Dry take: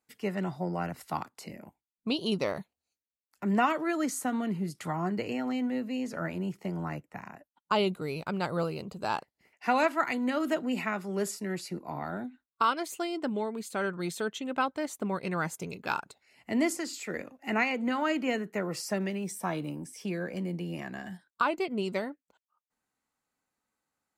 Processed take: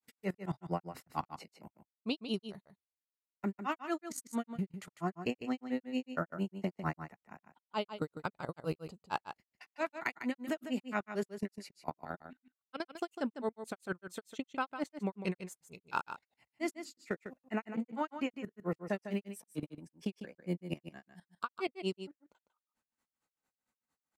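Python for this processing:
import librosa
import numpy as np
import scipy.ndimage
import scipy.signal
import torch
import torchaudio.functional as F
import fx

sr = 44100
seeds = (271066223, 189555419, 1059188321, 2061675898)

y = fx.level_steps(x, sr, step_db=18)
y = fx.granulator(y, sr, seeds[0], grain_ms=123.0, per_s=4.4, spray_ms=29.0, spread_st=0)
y = y + 10.0 ** (-10.0 / 20.0) * np.pad(y, (int(151 * sr / 1000.0), 0))[:len(y)]
y = y * librosa.db_to_amplitude(5.5)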